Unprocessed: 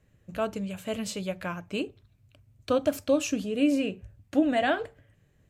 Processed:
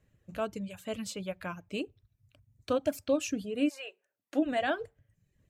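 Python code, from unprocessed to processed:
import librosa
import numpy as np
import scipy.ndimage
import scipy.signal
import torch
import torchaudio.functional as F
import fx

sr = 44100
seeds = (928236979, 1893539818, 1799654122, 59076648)

y = fx.highpass(x, sr, hz=fx.line((3.68, 790.0), (4.44, 230.0)), slope=24, at=(3.68, 4.44), fade=0.02)
y = fx.dereverb_blind(y, sr, rt60_s=0.68)
y = F.gain(torch.from_numpy(y), -4.0).numpy()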